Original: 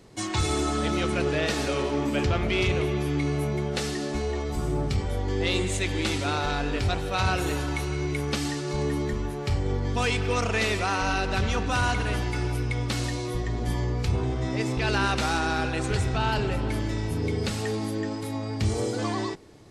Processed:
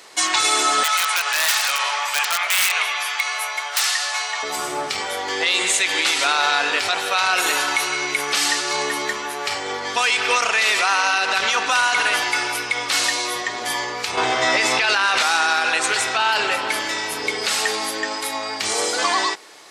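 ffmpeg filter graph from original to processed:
ffmpeg -i in.wav -filter_complex "[0:a]asettb=1/sr,asplit=3[link_01][link_02][link_03];[link_01]atrim=end=0.834[link_04];[link_02]atrim=start=0.83:end=4.43,asetpts=PTS-STARTPTS,afade=type=in:duration=0.004:curve=qsin,afade=type=out:start_time=3.596:duration=0.004:curve=qsin,highpass=frequency=770:width=0.5412,highpass=frequency=770:width=1.3066,aeval=exprs='(mod(15*val(0)+1,2)-1)/15':channel_layout=same[link_05];[link_03]atrim=start=4.426[link_06];[link_04][link_05]acrossfade=duration=0.004:curve1=hsin:curve2=qsin[link_07];[link_07][link_06]acrossfade=duration=0.004:curve1=qsin:curve2=hsin,asettb=1/sr,asplit=3[link_08][link_09][link_10];[link_08]atrim=end=14.174[link_11];[link_09]atrim=start=14.17:end=15.23,asetpts=PTS-STARTPTS,afade=type=in:duration=0.004:curve=qsin,afade=type=out:start_time=1.056:duration=0.004:curve=qsin,highshelf=frequency=9100:gain=-7,acontrast=69,asplit=2[link_12][link_13];[link_13]adelay=17,volume=-12.5dB[link_14];[link_12][link_14]amix=inputs=2:normalize=0,atrim=end_sample=46746[link_15];[link_10]atrim=start=15.226[link_16];[link_11][link_15]acrossfade=duration=0.004:curve1=hsin:curve2=qsin[link_17];[link_17][link_16]acrossfade=duration=0.004:curve1=qsin:curve2=hsin,highpass=1000,alimiter=level_in=24dB:limit=-1dB:release=50:level=0:latency=1,volume=-7.5dB" out.wav

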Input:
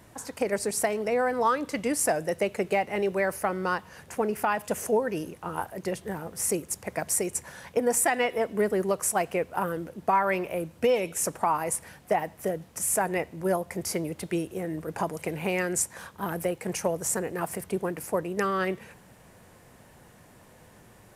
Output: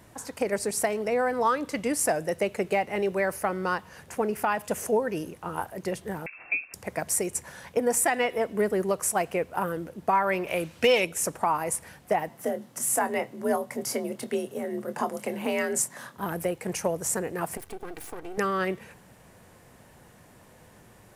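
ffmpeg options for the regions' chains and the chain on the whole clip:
ffmpeg -i in.wav -filter_complex "[0:a]asettb=1/sr,asplit=3[link_01][link_02][link_03];[link_01]atrim=end=6.264[link_04];[link_02]atrim=start=6.26:end=6.74,asetpts=PTS-STARTPTS,afade=type=in:duration=0.004:curve=qsin,afade=type=out:start_time=0.476:duration=0.004:curve=qsin,lowpass=frequency=2400:width_type=q:width=0.5098,lowpass=frequency=2400:width_type=q:width=0.6013,lowpass=frequency=2400:width_type=q:width=0.9,lowpass=frequency=2400:width_type=q:width=2.563,afreqshift=-2800,bandreject=frequency=890:width=7.5[link_05];[link_03]atrim=start=6.736[link_06];[link_04][link_05]acrossfade=duration=0.004:curve1=hsin:curve2=qsin[link_07];[link_07][link_06]acrossfade=duration=0.004:curve1=qsin:curve2=hsin,asettb=1/sr,asplit=3[link_08][link_09][link_10];[link_08]atrim=end=10.474[link_11];[link_09]atrim=start=10.47:end=11.05,asetpts=PTS-STARTPTS,afade=type=in:duration=0.004:curve=qsin,afade=type=out:start_time=0.576:duration=0.004:curve=qsin,equalizer=frequency=3500:width=0.4:gain=11.5,asoftclip=type=hard:threshold=-12dB[link_12];[link_10]atrim=start=11.046[link_13];[link_11][link_12]acrossfade=duration=0.004:curve1=hsin:curve2=qsin[link_14];[link_14][link_13]acrossfade=duration=0.004:curve1=qsin:curve2=hsin,asettb=1/sr,asplit=3[link_15][link_16][link_17];[link_15]atrim=end=12.294[link_18];[link_16]atrim=start=12.29:end=16.18,asetpts=PTS-STARTPTS,afade=type=in:duration=0.004:curve=qsin,afade=type=out:start_time=3.886:duration=0.004:curve=qsin,bandreject=frequency=2400:width=12,afreqshift=49,asplit=2[link_19][link_20];[link_20]adelay=25,volume=-10.5dB[link_21];[link_19][link_21]amix=inputs=2:normalize=0,atrim=end_sample=171549[link_22];[link_17]atrim=start=16.176[link_23];[link_18][link_22]acrossfade=duration=0.004:curve1=hsin:curve2=qsin[link_24];[link_24][link_23]acrossfade=duration=0.004:curve1=qsin:curve2=hsin,asettb=1/sr,asplit=3[link_25][link_26][link_27];[link_25]atrim=end=17.574[link_28];[link_26]atrim=start=17.57:end=18.38,asetpts=PTS-STARTPTS,afade=type=in:duration=0.004:curve=qsin,afade=type=out:start_time=0.806:duration=0.004:curve=qsin,aecho=1:1:2.6:0.63,atrim=end_sample=35721,acompressor=threshold=-31dB:ratio=5:attack=3.2:release=140:knee=1:detection=peak,aeval=exprs='max(val(0),0)':channel_layout=same[link_29];[link_27]atrim=start=18.376[link_30];[link_28][link_29]acrossfade=duration=0.004:curve1=hsin:curve2=qsin[link_31];[link_31][link_30]acrossfade=duration=0.004:curve1=qsin:curve2=hsin" out.wav

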